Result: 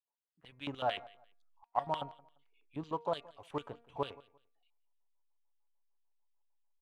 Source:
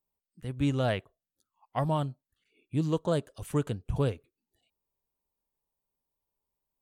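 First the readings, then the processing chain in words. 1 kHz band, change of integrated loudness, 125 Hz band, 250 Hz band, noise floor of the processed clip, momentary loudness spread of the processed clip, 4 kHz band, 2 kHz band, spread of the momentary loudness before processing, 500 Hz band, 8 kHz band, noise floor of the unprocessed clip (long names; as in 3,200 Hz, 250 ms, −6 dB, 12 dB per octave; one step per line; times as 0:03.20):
0.0 dB, −8.5 dB, −20.0 dB, −14.0 dB, below −85 dBFS, 12 LU, −2.0 dB, −6.0 dB, 9 LU, −7.5 dB, below −15 dB, below −85 dBFS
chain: high-shelf EQ 3,300 Hz −8 dB
comb filter 7.1 ms, depth 36%
auto-filter band-pass square 6.7 Hz 890–3,200 Hz
in parallel at −7 dB: slack as between gear wheels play −46.5 dBFS
on the sum: hum removal 234.6 Hz, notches 11
on a send: repeating echo 173 ms, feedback 25%, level −22 dB
on the sum: level +1 dB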